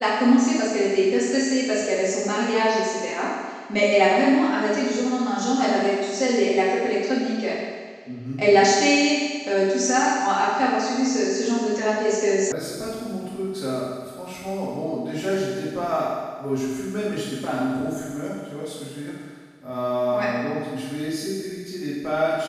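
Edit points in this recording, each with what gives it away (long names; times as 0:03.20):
0:12.52: cut off before it has died away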